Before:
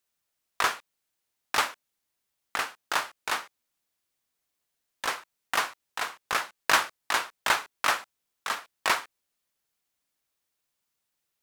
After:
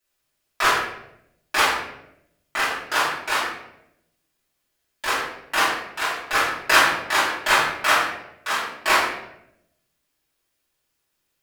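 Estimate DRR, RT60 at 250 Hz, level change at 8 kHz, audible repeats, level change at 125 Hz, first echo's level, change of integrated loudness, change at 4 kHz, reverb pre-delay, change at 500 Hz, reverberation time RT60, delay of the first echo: -12.0 dB, 1.1 s, +5.5 dB, no echo, +10.5 dB, no echo, +7.5 dB, +7.5 dB, 3 ms, +9.5 dB, 0.80 s, no echo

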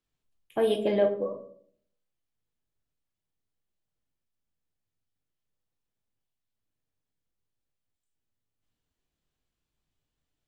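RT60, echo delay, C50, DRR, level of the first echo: 0.55 s, no echo, 10.5 dB, 4.0 dB, no echo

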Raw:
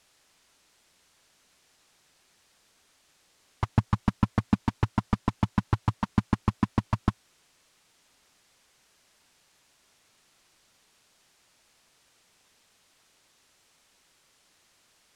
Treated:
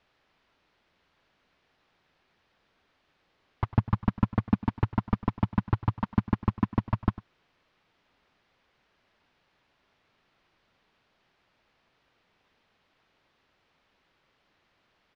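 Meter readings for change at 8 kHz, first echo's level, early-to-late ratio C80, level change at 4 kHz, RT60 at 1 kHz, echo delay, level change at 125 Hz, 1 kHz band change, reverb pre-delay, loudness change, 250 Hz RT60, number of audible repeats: no reading, -18.5 dB, no reverb, -7.0 dB, no reverb, 100 ms, 0.0 dB, -1.5 dB, no reverb, -0.5 dB, no reverb, 1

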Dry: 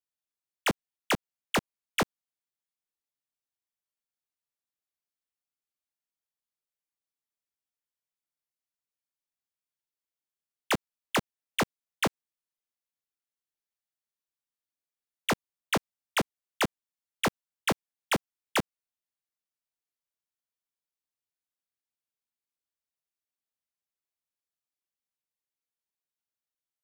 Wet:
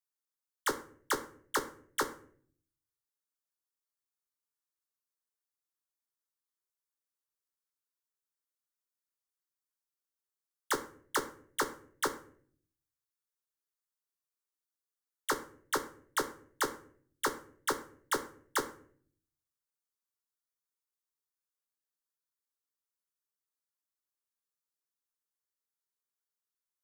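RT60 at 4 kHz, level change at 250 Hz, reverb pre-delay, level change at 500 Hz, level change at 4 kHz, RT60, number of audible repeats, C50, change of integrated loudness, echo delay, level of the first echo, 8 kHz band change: 0.35 s, -9.0 dB, 5 ms, -4.5 dB, -7.5 dB, 0.55 s, no echo, 13.0 dB, -4.5 dB, no echo, no echo, -0.5 dB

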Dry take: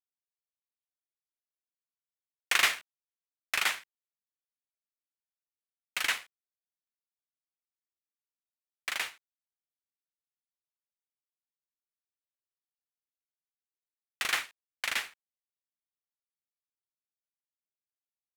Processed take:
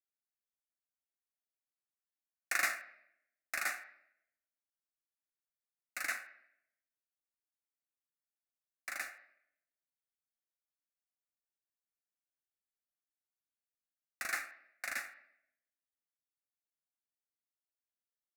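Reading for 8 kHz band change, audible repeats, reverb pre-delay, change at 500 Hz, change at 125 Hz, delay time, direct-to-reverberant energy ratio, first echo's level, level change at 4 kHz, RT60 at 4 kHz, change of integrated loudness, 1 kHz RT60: -6.5 dB, no echo, 3 ms, -5.5 dB, no reading, no echo, 7.5 dB, no echo, -16.5 dB, 0.65 s, -8.0 dB, 0.65 s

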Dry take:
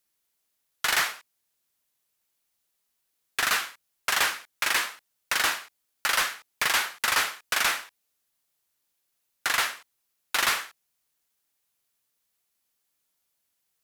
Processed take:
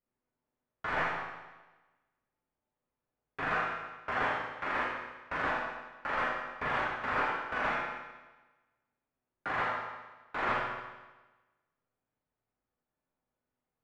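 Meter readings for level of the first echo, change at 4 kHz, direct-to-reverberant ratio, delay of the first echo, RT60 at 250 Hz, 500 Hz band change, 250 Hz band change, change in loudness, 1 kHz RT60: no echo, -19.0 dB, -7.0 dB, no echo, 1.2 s, +3.0 dB, +4.5 dB, -8.0 dB, 1.2 s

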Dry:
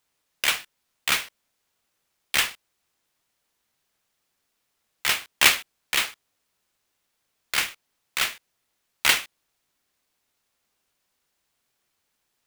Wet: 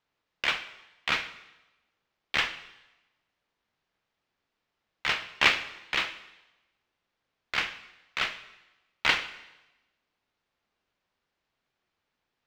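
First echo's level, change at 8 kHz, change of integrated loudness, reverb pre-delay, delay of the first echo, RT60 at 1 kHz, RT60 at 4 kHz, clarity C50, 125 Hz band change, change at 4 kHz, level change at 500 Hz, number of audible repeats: no echo, -17.5 dB, -5.0 dB, 7 ms, no echo, 1.0 s, 1.0 s, 13.0 dB, -1.0 dB, -5.5 dB, -1.0 dB, no echo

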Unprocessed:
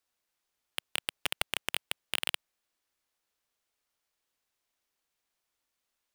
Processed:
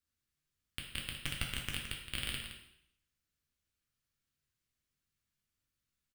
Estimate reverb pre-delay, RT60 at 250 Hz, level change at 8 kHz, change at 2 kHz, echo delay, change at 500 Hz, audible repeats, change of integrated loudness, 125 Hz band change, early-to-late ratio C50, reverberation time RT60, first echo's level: 5 ms, 0.80 s, -5.0 dB, -5.0 dB, 168 ms, -9.0 dB, 1, -5.0 dB, +11.0 dB, 3.5 dB, 0.70 s, -9.0 dB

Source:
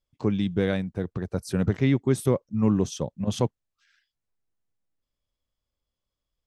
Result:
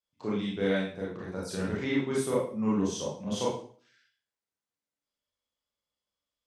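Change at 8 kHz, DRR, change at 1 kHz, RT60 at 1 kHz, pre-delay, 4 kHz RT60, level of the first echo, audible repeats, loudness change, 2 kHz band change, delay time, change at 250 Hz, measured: -0.5 dB, -5.5 dB, -0.5 dB, 0.45 s, 27 ms, 0.45 s, no echo, no echo, -5.0 dB, 0.0 dB, no echo, -5.0 dB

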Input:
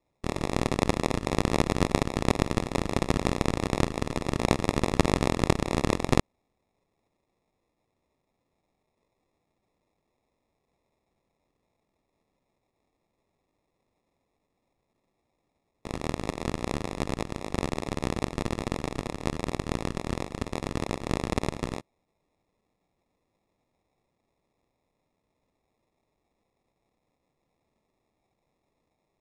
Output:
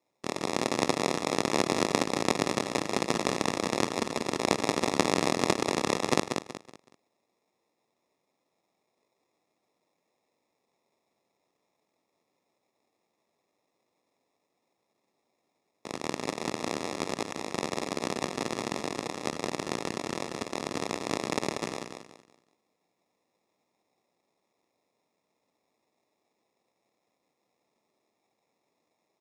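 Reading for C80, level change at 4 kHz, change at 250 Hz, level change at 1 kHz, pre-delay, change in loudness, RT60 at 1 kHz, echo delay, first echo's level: no reverb, +3.5 dB, -2.5 dB, +1.0 dB, no reverb, -1.0 dB, no reverb, 187 ms, -6.0 dB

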